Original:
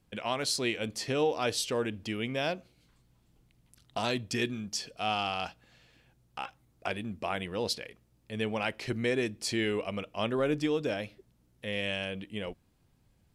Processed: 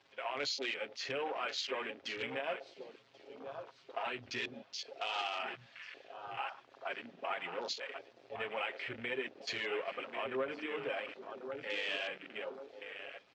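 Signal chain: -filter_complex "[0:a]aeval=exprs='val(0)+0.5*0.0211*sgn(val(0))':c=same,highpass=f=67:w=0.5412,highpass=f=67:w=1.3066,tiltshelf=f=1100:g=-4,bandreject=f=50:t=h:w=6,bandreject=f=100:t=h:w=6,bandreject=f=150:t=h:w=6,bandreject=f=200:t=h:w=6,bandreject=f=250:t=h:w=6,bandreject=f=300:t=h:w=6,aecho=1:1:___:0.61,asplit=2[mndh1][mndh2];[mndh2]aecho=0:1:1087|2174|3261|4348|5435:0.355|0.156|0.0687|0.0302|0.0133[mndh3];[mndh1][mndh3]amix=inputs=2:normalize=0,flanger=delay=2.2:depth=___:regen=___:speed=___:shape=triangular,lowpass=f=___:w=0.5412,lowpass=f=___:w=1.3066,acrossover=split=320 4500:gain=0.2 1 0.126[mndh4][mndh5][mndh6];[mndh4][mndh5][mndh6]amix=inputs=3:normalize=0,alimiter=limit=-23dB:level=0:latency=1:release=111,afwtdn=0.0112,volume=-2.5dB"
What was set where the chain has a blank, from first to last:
7.4, 6.7, -43, 1.5, 6600, 6600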